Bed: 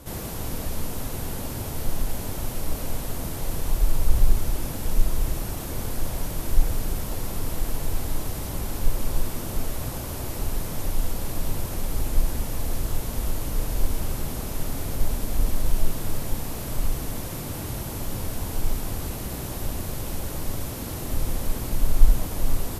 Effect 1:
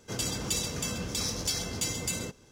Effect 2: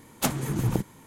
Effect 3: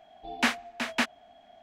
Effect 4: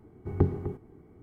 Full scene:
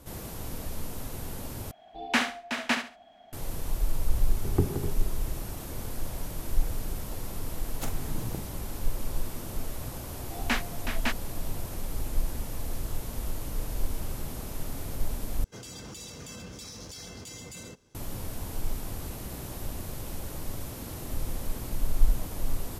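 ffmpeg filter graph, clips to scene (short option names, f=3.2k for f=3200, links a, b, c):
-filter_complex "[3:a]asplit=2[a][b];[0:a]volume=-6.5dB[c];[a]aecho=1:1:67|134|201:0.398|0.104|0.0269[d];[4:a]aecho=1:1:174:0.398[e];[2:a]asplit=2[f][g];[g]adelay=43,volume=-9dB[h];[f][h]amix=inputs=2:normalize=0[i];[1:a]alimiter=level_in=3dB:limit=-24dB:level=0:latency=1:release=12,volume=-3dB[j];[c]asplit=3[k][l][m];[k]atrim=end=1.714[n];[d]atrim=end=1.62[o];[l]atrim=start=3.326:end=15.444[p];[j]atrim=end=2.51,asetpts=PTS-STARTPTS,volume=-7dB[q];[m]atrim=start=17.946[r];[e]atrim=end=1.22,asetpts=PTS-STARTPTS,volume=-1.5dB,afade=t=in:d=0.004:c=hsin,afade=t=out:st=1.216:d=0.004:c=hsin,adelay=4180[s];[i]atrim=end=1.06,asetpts=PTS-STARTPTS,volume=-12dB,afade=t=in:d=0.004:c=hsin,afade=t=out:st=1.056:d=0.004:c=hsin,adelay=7590[t];[b]atrim=end=1.62,asetpts=PTS-STARTPTS,volume=-3.5dB,afade=t=in:d=0.004:c=hsin,afade=t=out:st=1.616:d=0.004:c=hsin,adelay=10070[u];[n][o]acrossfade=d=0.004:c1=hsin:c2=hsin[v];[v][p]acrossfade=d=0.004:c1=hsin:c2=hsin[w];[w][q]acrossfade=d=0.004:c1=hsin:c2=hsin[x];[x][r]acrossfade=d=0.004:c1=hsin:c2=hsin[y];[y][s][t][u]amix=inputs=4:normalize=0"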